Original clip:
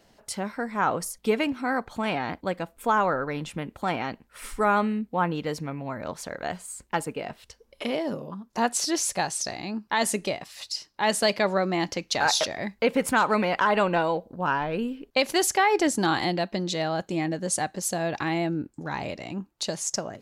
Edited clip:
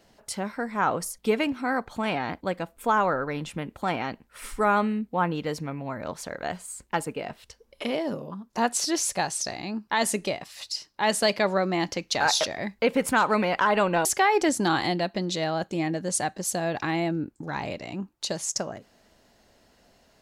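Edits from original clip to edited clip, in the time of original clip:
0:14.05–0:15.43: remove

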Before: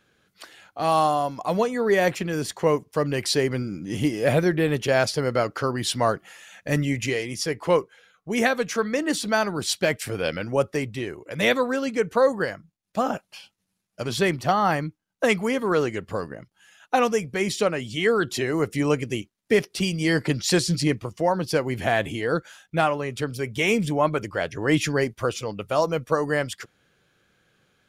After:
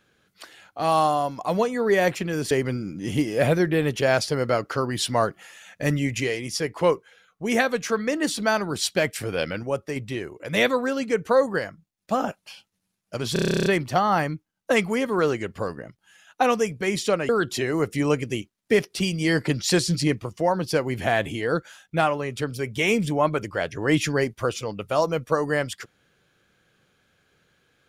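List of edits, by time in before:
0:02.51–0:03.37: remove
0:10.49–0:10.82: clip gain −4.5 dB
0:14.19: stutter 0.03 s, 12 plays
0:17.82–0:18.09: remove

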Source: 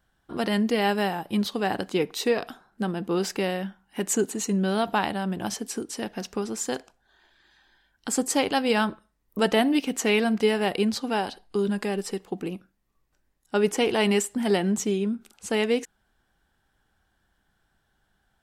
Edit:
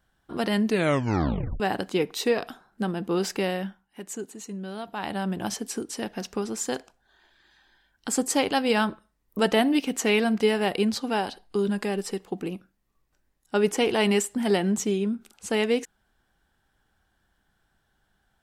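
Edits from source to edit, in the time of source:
0:00.65: tape stop 0.95 s
0:03.68–0:05.18: duck −11 dB, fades 0.22 s

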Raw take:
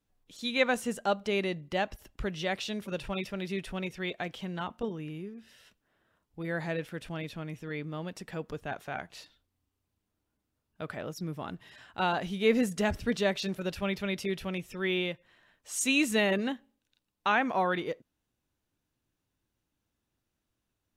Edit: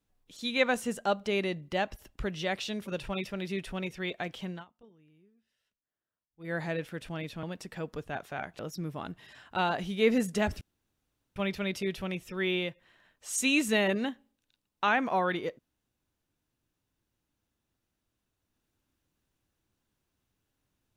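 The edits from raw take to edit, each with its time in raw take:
0:04.50–0:06.53: duck −23 dB, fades 0.15 s
0:07.43–0:07.99: remove
0:09.15–0:11.02: remove
0:13.04–0:13.79: fill with room tone

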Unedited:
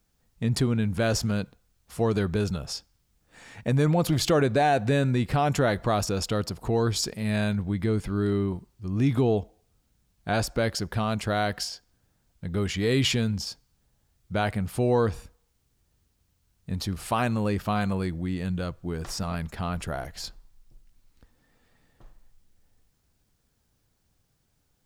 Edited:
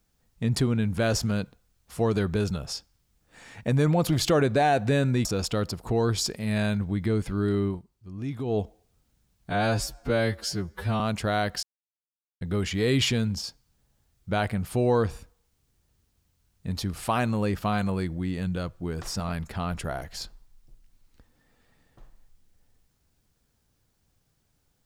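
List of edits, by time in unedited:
0:05.25–0:06.03: remove
0:08.46–0:09.38: duck −9.5 dB, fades 0.15 s
0:10.28–0:11.03: time-stretch 2×
0:11.66–0:12.44: silence

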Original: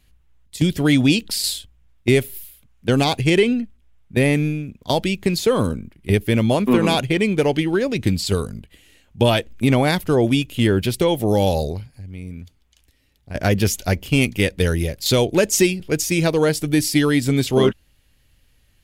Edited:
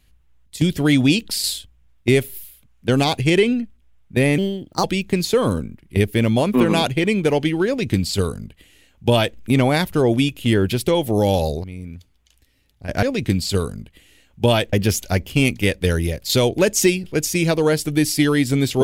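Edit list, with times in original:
0:04.38–0:04.97: play speed 129%
0:07.80–0:09.50: duplicate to 0:13.49
0:11.77–0:12.10: remove

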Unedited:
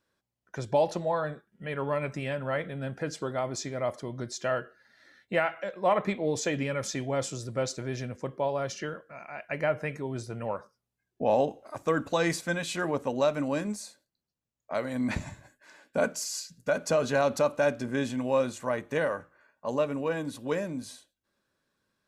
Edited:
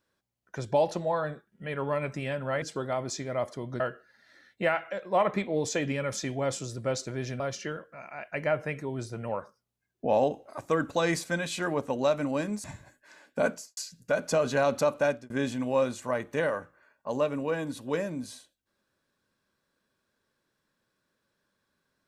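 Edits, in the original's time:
0:02.62–0:03.08: remove
0:04.26–0:04.51: remove
0:08.11–0:08.57: remove
0:13.81–0:15.22: remove
0:16.08–0:16.35: fade out and dull
0:17.63–0:17.88: fade out

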